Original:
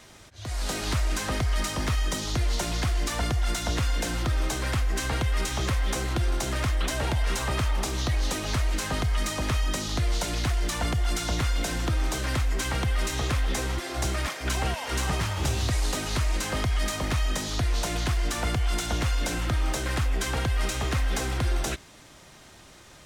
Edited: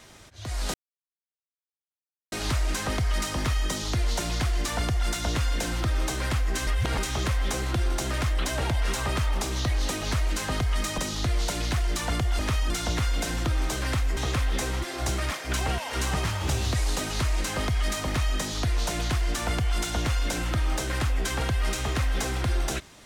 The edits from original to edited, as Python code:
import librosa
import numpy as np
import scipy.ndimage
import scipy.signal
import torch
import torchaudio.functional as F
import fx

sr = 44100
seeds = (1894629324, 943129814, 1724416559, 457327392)

y = fx.edit(x, sr, fx.insert_silence(at_s=0.74, length_s=1.58),
    fx.reverse_span(start_s=5.09, length_s=0.31),
    fx.move(start_s=9.4, length_s=0.31, to_s=11.12),
    fx.cut(start_s=12.59, length_s=0.54), tone=tone)